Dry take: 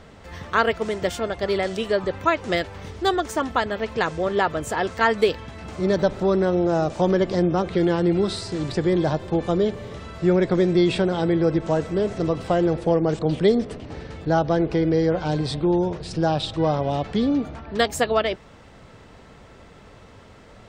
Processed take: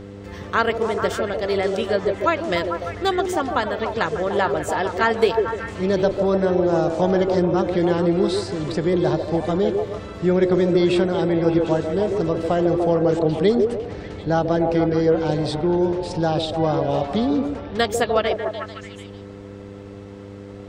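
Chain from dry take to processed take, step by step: delay with a stepping band-pass 0.148 s, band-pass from 430 Hz, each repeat 0.7 oct, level -1.5 dB; buzz 100 Hz, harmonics 5, -38 dBFS -1 dB/oct

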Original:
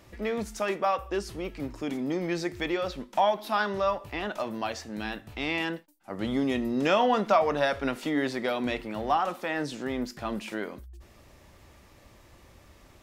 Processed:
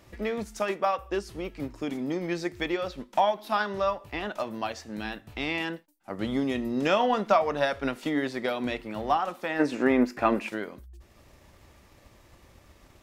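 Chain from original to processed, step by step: transient shaper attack +3 dB, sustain -3 dB; spectral gain 9.59–10.48, 230–2800 Hz +10 dB; gain -1 dB

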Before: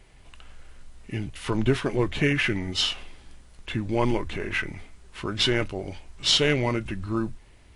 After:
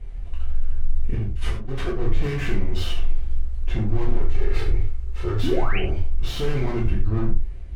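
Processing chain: 4.18–5.39 minimum comb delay 2.3 ms; tube stage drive 33 dB, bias 0.65; low shelf 89 Hz +8 dB; 5.43–5.79 painted sound rise 230–3200 Hz -30 dBFS; tilt -3 dB/oct; limiter -18.5 dBFS, peak gain reduction 9.5 dB; 1.15–1.97 negative-ratio compressor -28 dBFS, ratio -0.5; non-linear reverb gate 0.14 s falling, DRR -4.5 dB

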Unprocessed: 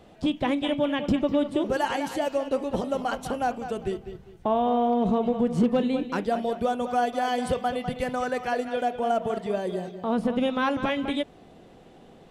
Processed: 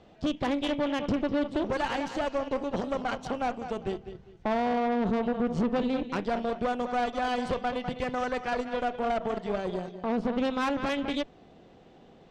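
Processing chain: LPF 6600 Hz 24 dB/oct; tube stage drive 24 dB, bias 0.8; gain +1.5 dB

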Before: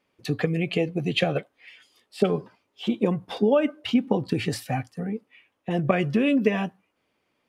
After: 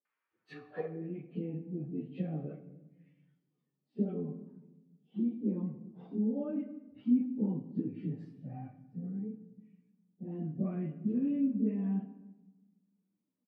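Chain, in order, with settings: high shelf 6300 Hz -11 dB; plain phase-vocoder stretch 1.8×; band-pass sweep 1500 Hz -> 230 Hz, 0.48–1.15; bands offset in time lows, highs 50 ms, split 550 Hz; shoebox room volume 530 m³, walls mixed, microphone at 0.49 m; gain -3.5 dB

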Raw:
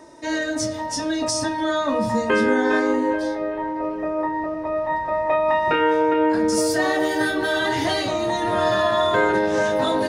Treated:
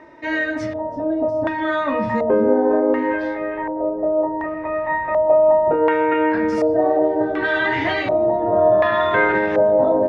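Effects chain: LFO low-pass square 0.68 Hz 660–2200 Hz

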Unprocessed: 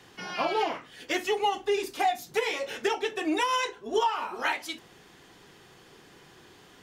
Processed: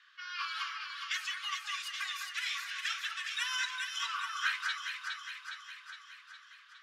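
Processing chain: low-pass opened by the level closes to 2700 Hz, open at -24 dBFS; rippled Chebyshev high-pass 1100 Hz, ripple 6 dB; echo with dull and thin repeats by turns 0.206 s, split 1800 Hz, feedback 77%, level -2 dB

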